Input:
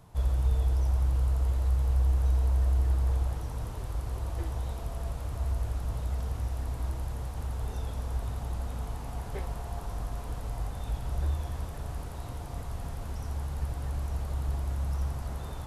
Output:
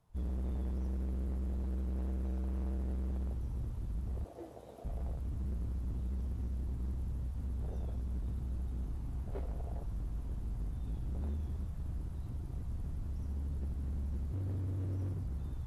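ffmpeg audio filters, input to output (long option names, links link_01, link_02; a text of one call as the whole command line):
ffmpeg -i in.wav -filter_complex "[0:a]afwtdn=0.0158,asettb=1/sr,asplit=3[link_01][link_02][link_03];[link_01]atrim=end=4.244[link_04];[link_02]atrim=start=4.24:end=4.85,asetpts=PTS-STARTPTS,afade=type=in:duration=0.004:curve=qsin,afade=type=out:start_time=0.606:duration=0.004:curve=qsin,highpass=320[link_05];[link_03]atrim=start=4.846[link_06];[link_04][link_05]acrossfade=duration=0.004:curve1=hsin:curve2=qsin[link_07];[link_07][link_06]acrossfade=duration=0.004:curve1=qsin:curve2=hsin,asettb=1/sr,asplit=3[link_08][link_09][link_10];[link_08]atrim=end=14.324[link_11];[link_09]atrim=start=14.32:end=15.26,asetpts=PTS-STARTPTS,afade=type=in:duration=0.004:curve=qsin,afade=type=out:start_time=0.936:duration=0.004:curve=qsin,afreqshift=26[link_12];[link_10]atrim=start=15.256[link_13];[link_11][link_12]acrossfade=duration=0.004:curve1=hsin:curve2=qsin[link_14];[link_14][link_13]acrossfade=duration=0.004:curve1=qsin:curve2=hsin,acrossover=split=1400[link_15][link_16];[link_15]volume=33.5dB,asoftclip=hard,volume=-33.5dB[link_17];[link_17][link_16]amix=inputs=2:normalize=0,volume=-1dB" -ar 32000 -c:a aac -b:a 48k out.aac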